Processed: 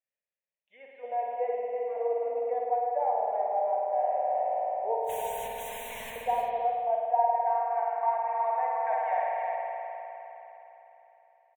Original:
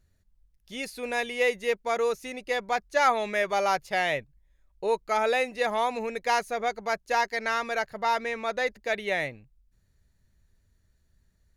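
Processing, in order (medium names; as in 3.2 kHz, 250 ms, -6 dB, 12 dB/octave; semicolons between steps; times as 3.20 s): band-pass sweep 450 Hz -> 1.1 kHz, 6.53–7.61 s; 1.51–1.95 s: compression 3:1, threshold -45 dBFS, peak gain reduction 16 dB; auto-wah 780–2700 Hz, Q 3.5, down, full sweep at -34 dBFS; 4.96–6.16 s: integer overflow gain 49 dB; static phaser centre 1.3 kHz, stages 6; delay 323 ms -6 dB; spring tank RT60 3.6 s, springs 51 ms, chirp 50 ms, DRR -3 dB; gain riding within 4 dB 0.5 s; trim +7.5 dB; WMA 64 kbps 48 kHz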